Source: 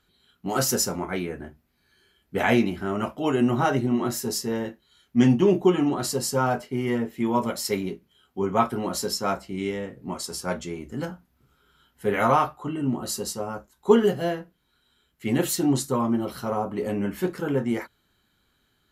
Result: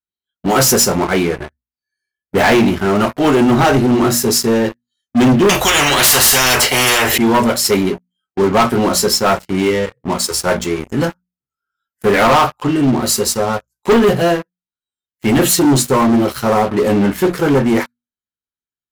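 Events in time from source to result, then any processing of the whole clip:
0:05.49–0:07.18: every bin compressed towards the loudest bin 10 to 1
whole clip: noise reduction from a noise print of the clip's start 20 dB; mains-hum notches 60/120/180/240 Hz; leveller curve on the samples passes 5; level −2.5 dB

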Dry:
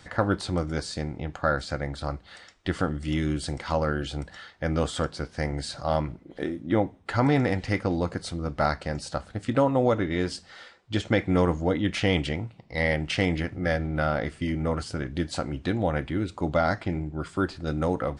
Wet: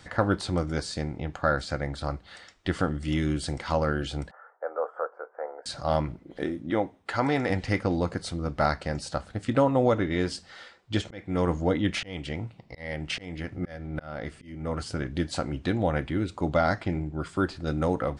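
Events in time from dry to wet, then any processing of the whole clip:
0:04.31–0:05.66: elliptic band-pass filter 460–1,400 Hz, stop band 50 dB
0:06.70–0:07.50: low-shelf EQ 210 Hz −11.5 dB
0:11.04–0:14.93: volume swells 456 ms

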